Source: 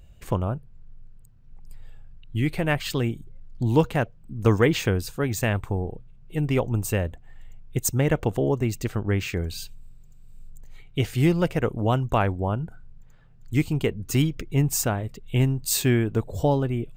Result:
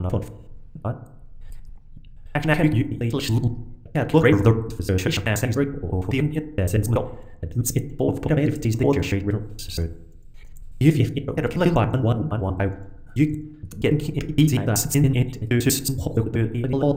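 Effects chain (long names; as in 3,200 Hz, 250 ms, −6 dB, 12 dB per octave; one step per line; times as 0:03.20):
slices reordered back to front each 94 ms, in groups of 5
rotating-speaker cabinet horn 1.1 Hz, later 5.5 Hz, at 0:12.35
feedback delay network reverb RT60 0.76 s, low-frequency decay 1.1×, high-frequency decay 0.35×, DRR 9 dB
level +4 dB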